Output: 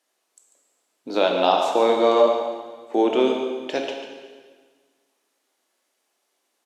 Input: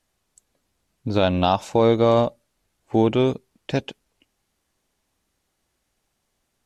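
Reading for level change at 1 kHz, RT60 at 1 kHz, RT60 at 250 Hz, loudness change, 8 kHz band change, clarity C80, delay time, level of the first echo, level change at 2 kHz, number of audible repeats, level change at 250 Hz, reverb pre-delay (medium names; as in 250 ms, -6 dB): +2.5 dB, 1.5 s, 1.7 s, 0.0 dB, no reading, 4.5 dB, 144 ms, -9.5 dB, +2.0 dB, 1, -3.0 dB, 14 ms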